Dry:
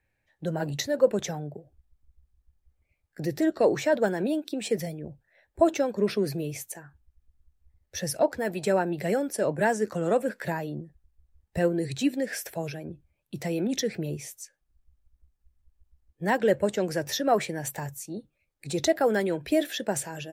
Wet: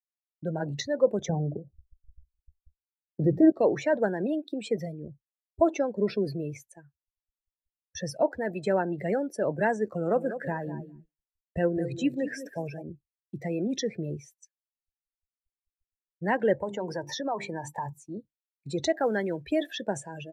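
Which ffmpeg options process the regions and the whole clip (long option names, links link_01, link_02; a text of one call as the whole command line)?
ffmpeg -i in.wav -filter_complex "[0:a]asettb=1/sr,asplit=3[link_01][link_02][link_03];[link_01]atrim=end=1.294[link_04];[link_02]atrim=start=1.29:end=3.52,asetpts=PTS-STARTPTS,afade=type=in:duration=0.004:curve=qsin,afade=type=out:start_time=2.226:duration=0.004:curve=qsin,tiltshelf=frequency=1100:gain=9.5,bandreject=frequency=60:width_type=h:width=6,bandreject=frequency=120:width_type=h:width=6,bandreject=frequency=180:width_type=h:width=6,bandreject=frequency=240:width_type=h:width=6,bandreject=frequency=300:width_type=h:width=6[link_05];[link_03]atrim=start=3.516[link_06];[link_04][link_05]acrossfade=duration=0.004:curve1=hsin:curve2=qsin[link_07];[link_07][link_06]acrossfade=duration=0.004:curve1=qsin:curve2=hsin,asettb=1/sr,asplit=3[link_08][link_09][link_10];[link_08]atrim=end=9.864[link_11];[link_09]atrim=start=9.86:end=12.82,asetpts=PTS-STARTPTS,afade=type=in:duration=0.004:curve=qsin,afade=type=out:start_time=2.956:duration=0.004:curve=qsin,equalizer=frequency=4000:width=2.5:gain=-3,aecho=1:1:200|400|600:0.282|0.0705|0.0176,atrim=end_sample=130536[link_12];[link_10]atrim=start=12.816[link_13];[link_11][link_12]acrossfade=duration=0.004:curve1=hsin:curve2=qsin[link_14];[link_14][link_13]acrossfade=duration=0.004:curve1=qsin:curve2=hsin,asettb=1/sr,asplit=3[link_15][link_16][link_17];[link_15]atrim=end=16.584[link_18];[link_16]atrim=start=16.58:end=18.08,asetpts=PTS-STARTPTS,afade=type=in:duration=0.004:curve=qsin,afade=type=out:start_time=1.496:duration=0.004:curve=qsin,equalizer=frequency=930:width_type=o:width=0.36:gain=15,bandreject=frequency=50:width_type=h:width=6,bandreject=frequency=100:width_type=h:width=6,bandreject=frequency=150:width_type=h:width=6,bandreject=frequency=200:width_type=h:width=6,bandreject=frequency=250:width_type=h:width=6,bandreject=frequency=300:width_type=h:width=6,bandreject=frequency=350:width_type=h:width=6,bandreject=frequency=400:width_type=h:width=6,acompressor=threshold=-27dB:ratio=3:attack=3.2:release=140:knee=1:detection=peak[link_19];[link_17]atrim=start=18.076[link_20];[link_18][link_19]acrossfade=duration=0.004:curve1=hsin:curve2=qsin[link_21];[link_21][link_20]acrossfade=duration=0.004:curve1=qsin:curve2=hsin,asettb=1/sr,asplit=3[link_22][link_23][link_24];[link_22]atrim=end=18.834[link_25];[link_23]atrim=start=18.83:end=19.82,asetpts=PTS-STARTPTS,afade=type=in:duration=0.004:curve=qsin,afade=type=out:start_time=0.986:duration=0.004:curve=qsin,equalizer=frequency=440:width=0.82:gain=-2,acrusher=bits=6:mode=log:mix=0:aa=0.000001[link_26];[link_24]atrim=start=19.816[link_27];[link_25][link_26]acrossfade=duration=0.004:curve1=hsin:curve2=qsin[link_28];[link_28][link_27]acrossfade=duration=0.004:curve1=qsin:curve2=hsin,afftdn=noise_reduction=21:noise_floor=-36,acrossover=split=7300[link_29][link_30];[link_30]acompressor=threshold=-58dB:ratio=4:attack=1:release=60[link_31];[link_29][link_31]amix=inputs=2:normalize=0,agate=range=-33dB:threshold=-46dB:ratio=3:detection=peak,volume=-1.5dB" out.wav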